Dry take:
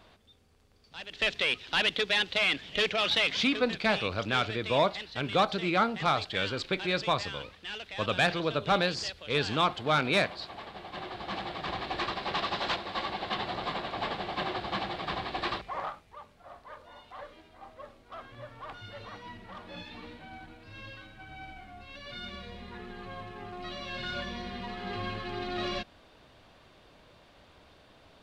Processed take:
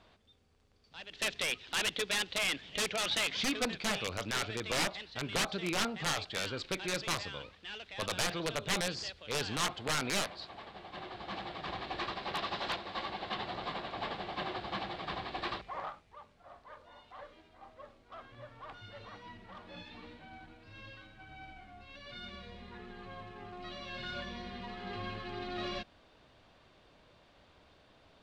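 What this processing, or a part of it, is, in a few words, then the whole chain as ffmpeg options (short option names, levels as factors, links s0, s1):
overflowing digital effects unit: -af "aeval=exprs='(mod(9.44*val(0)+1,2)-1)/9.44':c=same,lowpass=8700,volume=0.562"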